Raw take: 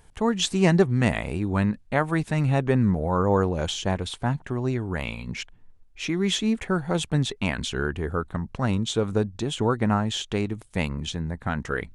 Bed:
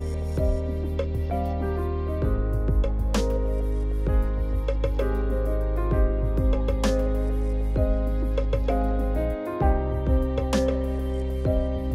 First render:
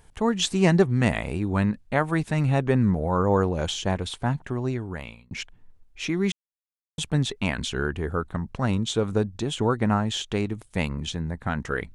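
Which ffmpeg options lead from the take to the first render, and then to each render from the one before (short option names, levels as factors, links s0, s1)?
-filter_complex "[0:a]asplit=4[s0][s1][s2][s3];[s0]atrim=end=5.31,asetpts=PTS-STARTPTS,afade=t=out:st=4.35:d=0.96:c=qsin[s4];[s1]atrim=start=5.31:end=6.32,asetpts=PTS-STARTPTS,afade=t=in:d=0.004:c=hsin,afade=t=out:st=1.006:d=0.004:c=hsin[s5];[s2]atrim=start=6.32:end=6.98,asetpts=PTS-STARTPTS,volume=0[s6];[s3]atrim=start=6.98,asetpts=PTS-STARTPTS,afade=t=in:d=0.004:c=hsin[s7];[s4][s5][s6][s7]concat=n=4:v=0:a=1"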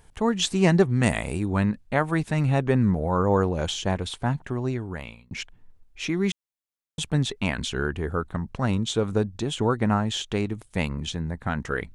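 -filter_complex "[0:a]asettb=1/sr,asplit=3[s0][s1][s2];[s0]atrim=end=1.034[s3];[s1]atrim=start=1.03:end=1.46,asetpts=PTS-STARTPTS,afade=t=in:d=0.004:c=qsin,afade=t=out:st=0.426:d=0.004:c=qsin,equalizer=f=8700:t=o:w=0.92:g=10.5[s4];[s2]atrim=start=1.456[s5];[s3][s4]acrossfade=d=0.004:c1=hsin:c2=qsin[s6];[s6][s5]acrossfade=d=0.004:c1=qsin:c2=hsin"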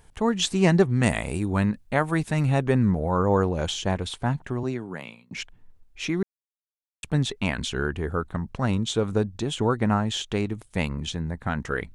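-filter_complex "[0:a]asettb=1/sr,asplit=3[s0][s1][s2];[s0]atrim=end=1.344[s3];[s1]atrim=start=1.34:end=2.79,asetpts=PTS-STARTPTS,afade=t=in:d=0.004:c=qsin,afade=t=out:st=1.446:d=0.004:c=qsin,highshelf=f=8800:g=8[s4];[s2]atrim=start=2.786[s5];[s3][s4]acrossfade=d=0.004:c1=hsin:c2=qsin[s6];[s6][s5]acrossfade=d=0.004:c1=qsin:c2=hsin,asettb=1/sr,asplit=3[s7][s8][s9];[s7]atrim=end=4.634[s10];[s8]atrim=start=4.63:end=5.36,asetpts=PTS-STARTPTS,afade=t=in:d=0.004:c=qsin,afade=t=out:st=0.726:d=0.004:c=qsin,highpass=f=140:w=0.5412,highpass=f=140:w=1.3066[s11];[s9]atrim=start=5.356[s12];[s10][s11]acrossfade=d=0.004:c1=hsin:c2=qsin[s13];[s13][s12]acrossfade=d=0.004:c1=qsin:c2=hsin,asplit=3[s14][s15][s16];[s14]atrim=end=6.23,asetpts=PTS-STARTPTS,afade=t=out:st=6.226:d=0.004:c=hsin[s17];[s15]atrim=start=6.23:end=7.03,asetpts=PTS-STARTPTS,volume=0[s18];[s16]atrim=start=7.03,asetpts=PTS-STARTPTS,afade=t=in:d=0.004:c=hsin[s19];[s17][s18][s19]concat=n=3:v=0:a=1"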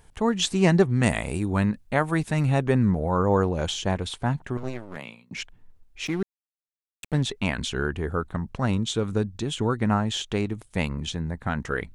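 -filter_complex "[0:a]asettb=1/sr,asplit=3[s0][s1][s2];[s0]atrim=end=4.574[s3];[s1]atrim=start=4.57:end=4.97,asetpts=PTS-STARTPTS,afade=t=in:d=0.004:c=qsin,afade=t=out:st=0.396:d=0.004:c=qsin,aeval=exprs='max(val(0),0)':c=same[s4];[s2]atrim=start=4.966[s5];[s3][s4]acrossfade=d=0.004:c1=hsin:c2=qsin[s6];[s6][s5]acrossfade=d=0.004:c1=qsin:c2=hsin,asplit=3[s7][s8][s9];[s7]afade=t=out:st=6.05:d=0.02[s10];[s8]aeval=exprs='sgn(val(0))*max(abs(val(0))-0.0119,0)':c=same,afade=t=in:st=6.05:d=0.02,afade=t=out:st=7.21:d=0.02[s11];[s9]afade=t=in:st=7.21:d=0.02[s12];[s10][s11][s12]amix=inputs=3:normalize=0,asettb=1/sr,asplit=3[s13][s14][s15];[s13]atrim=end=8.884[s16];[s14]atrim=start=8.88:end=9.89,asetpts=PTS-STARTPTS,afade=t=in:d=0.004:c=qsin,afade=t=out:st=1.006:d=0.004:c=qsin,equalizer=f=690:t=o:w=1.3:g=-5[s17];[s15]atrim=start=9.886[s18];[s16][s17]acrossfade=d=0.004:c1=hsin:c2=qsin[s19];[s19][s18]acrossfade=d=0.004:c1=qsin:c2=hsin"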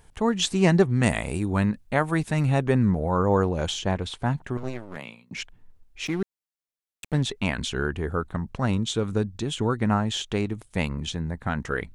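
-filter_complex "[0:a]asettb=1/sr,asplit=3[s0][s1][s2];[s0]atrim=end=3.794[s3];[s1]atrim=start=3.79:end=4.19,asetpts=PTS-STARTPTS,afade=t=in:d=0.004:c=qsin,afade=t=out:st=0.396:d=0.004:c=qsin,highshelf=f=9300:g=-11[s4];[s2]atrim=start=4.186[s5];[s3][s4]acrossfade=d=0.004:c1=hsin:c2=qsin[s6];[s6][s5]acrossfade=d=0.004:c1=qsin:c2=hsin"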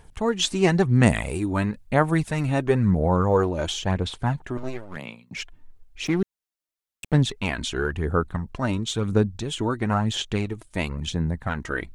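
-af "aphaser=in_gain=1:out_gain=1:delay=3.3:decay=0.44:speed=0.98:type=sinusoidal"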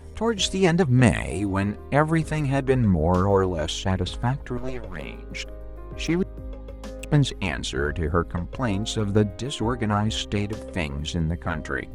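-filter_complex "[1:a]volume=0.2[s0];[0:a][s0]amix=inputs=2:normalize=0"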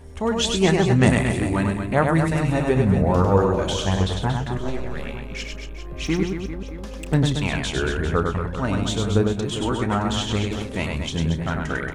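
-filter_complex "[0:a]asplit=2[s0][s1];[s1]adelay=31,volume=0.211[s2];[s0][s2]amix=inputs=2:normalize=0,aecho=1:1:100|230|399|618.7|904.3:0.631|0.398|0.251|0.158|0.1"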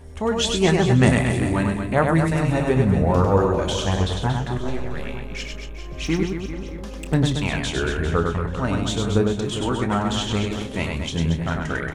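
-filter_complex "[0:a]asplit=2[s0][s1];[s1]adelay=24,volume=0.211[s2];[s0][s2]amix=inputs=2:normalize=0,aecho=1:1:438:0.126"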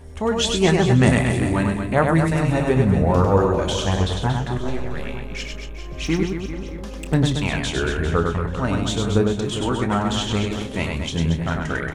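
-af "volume=1.12,alimiter=limit=0.794:level=0:latency=1"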